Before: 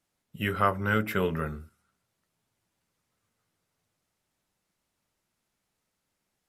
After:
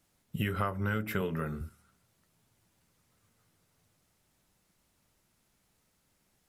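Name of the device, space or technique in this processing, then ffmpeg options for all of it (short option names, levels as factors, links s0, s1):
ASMR close-microphone chain: -filter_complex "[0:a]lowshelf=f=220:g=6.5,acompressor=threshold=0.02:ratio=6,highshelf=f=7200:g=4,asettb=1/sr,asplit=3[s0][s1][s2];[s0]atrim=end=1.214[s3];[s1]atrim=start=1.21:end=1.61,asetpts=PTS-STARTPTS,afade=t=in:d=0.004:c=qsin,afade=t=out:st=0.396:d=0.004:c=qsin,highpass=130[s4];[s2]atrim=start=1.606[s5];[s3][s4]acrossfade=d=0.004:c1=hsin:c2=qsin[s6];[s6][s5]acrossfade=d=0.004:c1=qsin:c2=hsin,volume=1.78"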